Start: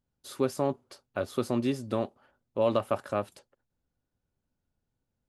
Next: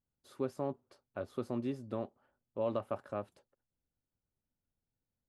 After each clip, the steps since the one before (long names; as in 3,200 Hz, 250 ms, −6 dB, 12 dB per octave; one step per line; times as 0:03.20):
high-shelf EQ 2,500 Hz −11 dB
level −8 dB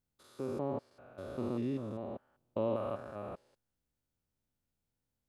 spectrum averaged block by block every 200 ms
level +4 dB